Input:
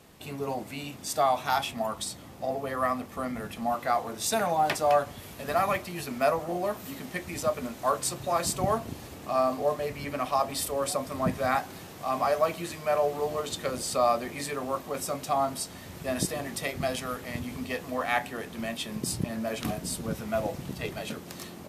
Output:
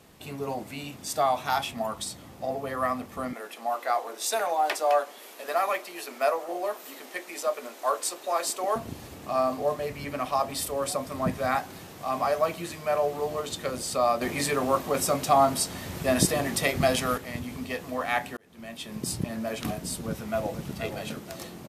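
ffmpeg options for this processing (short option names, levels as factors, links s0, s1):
-filter_complex "[0:a]asettb=1/sr,asplit=3[s0][s1][s2];[s0]atrim=end=3.334[s3];[s1]atrim=start=3.33:end=8.76,asetpts=PTS-STARTPTS,afade=t=in:d=0.004:c=qsin,afade=t=out:st=5.426:d=0.004:c=qsin,highpass=f=350:w=0.5412,highpass=f=350:w=1.3066[s4];[s2]atrim=start=8.756[s5];[s3][s4]acrossfade=d=0.004:c1=hsin:c2=qsin[s6];[s6][s5]acrossfade=d=0.004:c1=qsin:c2=hsin,asettb=1/sr,asplit=3[s7][s8][s9];[s7]atrim=end=14.214[s10];[s8]atrim=start=14.21:end=17.18,asetpts=PTS-STARTPTS,afade=t=in:d=0.004:c=qsin,afade=t=out:st=2.966:d=0.004:c=qsin,acontrast=73[s11];[s9]atrim=start=17.176[s12];[s10][s11]acrossfade=d=0.004:c1=hsin:c2=qsin[s13];[s13][s12]acrossfade=d=0.004:c1=qsin:c2=hsin,asplit=2[s14][s15];[s15]afade=t=in:st=20.03:d=0.01,afade=t=out:st=20.71:d=0.01,aecho=0:1:480|960|1440|1920|2400:0.375837|0.169127|0.0761071|0.0342482|0.0154117[s16];[s14][s16]amix=inputs=2:normalize=0,asplit=2[s17][s18];[s17]atrim=end=18.37,asetpts=PTS-STARTPTS,afade=t=out:st=18.366:d=0.004:c=hsin[s19];[s18]atrim=start=18.37,asetpts=PTS-STARTPTS,afade=t=in:d=0.71[s20];[s19][s20]concat=n=2:v=0:a=1"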